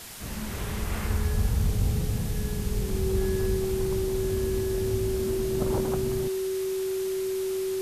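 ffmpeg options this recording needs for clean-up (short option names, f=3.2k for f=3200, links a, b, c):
-af "bandreject=f=380:w=30,afwtdn=0.0089"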